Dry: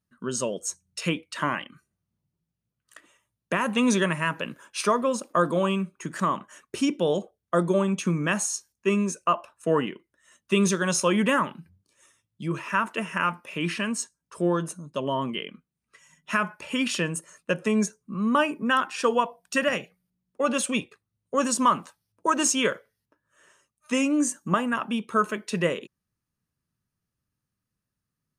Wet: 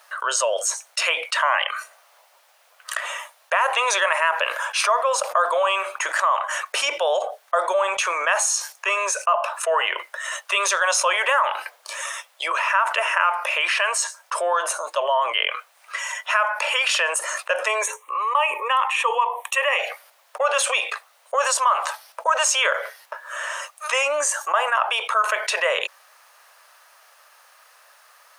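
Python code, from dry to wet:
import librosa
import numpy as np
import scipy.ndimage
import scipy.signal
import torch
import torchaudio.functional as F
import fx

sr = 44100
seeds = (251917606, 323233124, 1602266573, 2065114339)

y = fx.fixed_phaser(x, sr, hz=1000.0, stages=8, at=(17.82, 19.79))
y = scipy.signal.sosfilt(scipy.signal.butter(8, 590.0, 'highpass', fs=sr, output='sos'), y)
y = fx.high_shelf(y, sr, hz=3200.0, db=-10.5)
y = fx.env_flatten(y, sr, amount_pct=70)
y = y * 10.0 ** (2.0 / 20.0)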